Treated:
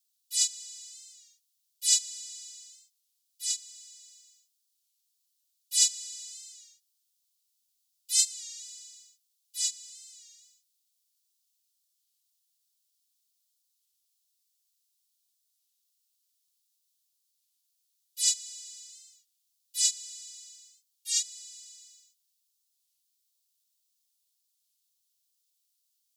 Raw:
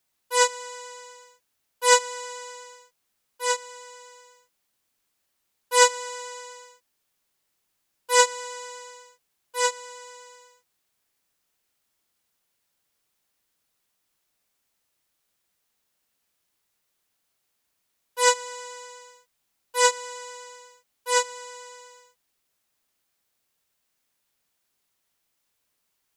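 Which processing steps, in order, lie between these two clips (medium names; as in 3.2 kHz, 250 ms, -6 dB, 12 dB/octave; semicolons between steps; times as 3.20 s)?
inverse Chebyshev high-pass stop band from 1.1 kHz, stop band 60 dB; warped record 33 1/3 rpm, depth 100 cents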